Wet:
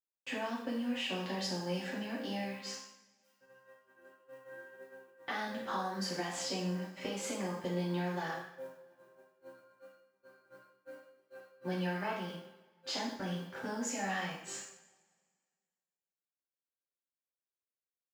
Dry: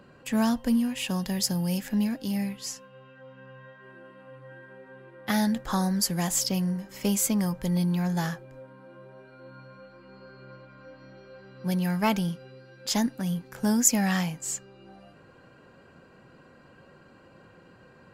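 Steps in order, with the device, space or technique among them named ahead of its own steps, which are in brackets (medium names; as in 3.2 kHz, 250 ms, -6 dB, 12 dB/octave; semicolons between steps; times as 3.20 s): baby monitor (band-pass 370–3500 Hz; compression 10:1, threshold -36 dBFS, peak gain reduction 15.5 dB; white noise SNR 26 dB; gate -47 dBFS, range -58 dB); 2.89–3.41 s: Bessel high-pass 2.9 kHz, order 2; two-slope reverb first 0.64 s, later 1.9 s, from -21 dB, DRR -7 dB; trim -4.5 dB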